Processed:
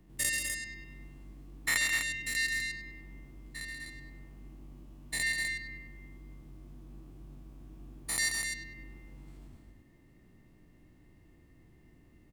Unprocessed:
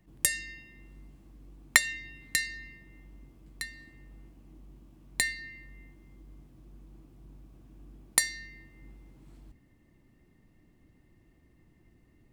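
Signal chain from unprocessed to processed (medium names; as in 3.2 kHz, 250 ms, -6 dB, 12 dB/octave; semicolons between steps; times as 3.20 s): spectrogram pixelated in time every 100 ms; loudspeakers at several distances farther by 46 m -7 dB, 86 m -6 dB; trim +2.5 dB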